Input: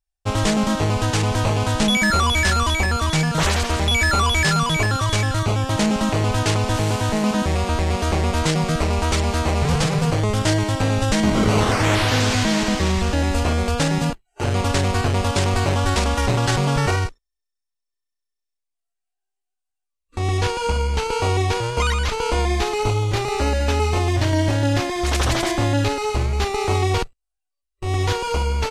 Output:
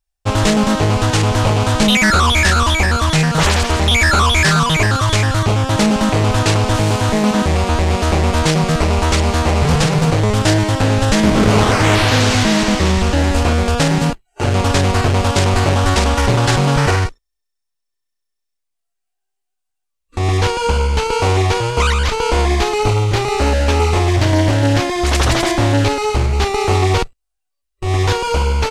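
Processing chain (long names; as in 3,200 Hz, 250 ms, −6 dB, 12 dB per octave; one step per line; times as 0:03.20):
highs frequency-modulated by the lows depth 0.29 ms
level +5.5 dB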